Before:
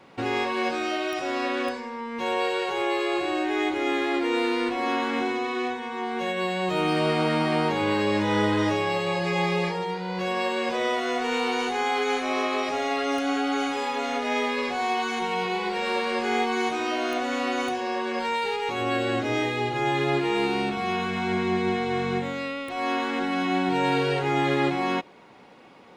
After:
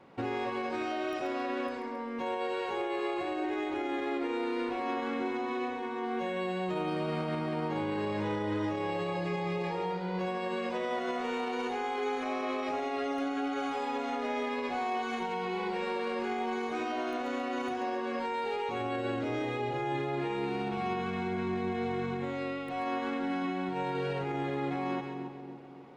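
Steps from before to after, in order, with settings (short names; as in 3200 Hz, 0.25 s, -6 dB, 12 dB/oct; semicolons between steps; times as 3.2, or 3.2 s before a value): high shelf 2100 Hz -9.5 dB; split-band echo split 780 Hz, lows 0.282 s, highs 0.135 s, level -11 dB; limiter -21.5 dBFS, peak gain reduction 9 dB; gain -3.5 dB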